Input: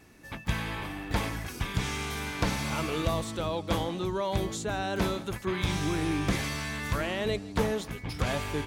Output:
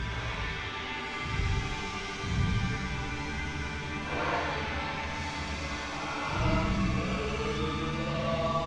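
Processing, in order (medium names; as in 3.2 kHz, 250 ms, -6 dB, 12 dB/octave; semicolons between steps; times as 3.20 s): tracing distortion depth 0.21 ms; low-pass 5.9 kHz 24 dB/octave; three bands offset in time mids, highs, lows 160/360 ms, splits 350/4300 Hz; Paulstretch 6.2×, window 0.10 s, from 1.74 s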